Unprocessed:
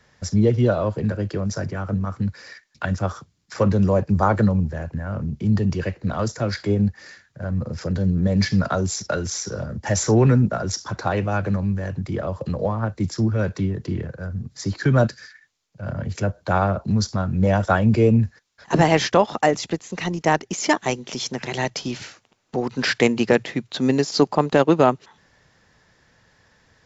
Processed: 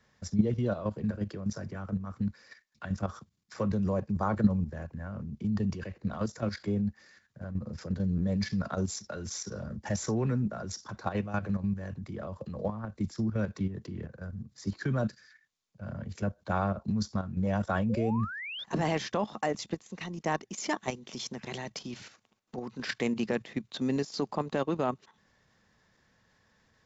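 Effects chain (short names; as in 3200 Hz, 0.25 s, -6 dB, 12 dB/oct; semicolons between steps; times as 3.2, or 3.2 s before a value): small resonant body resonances 210/1100/3600 Hz, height 7 dB, ringing for 80 ms; level quantiser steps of 10 dB; painted sound rise, 17.89–18.64, 460–3700 Hz -31 dBFS; gain -8 dB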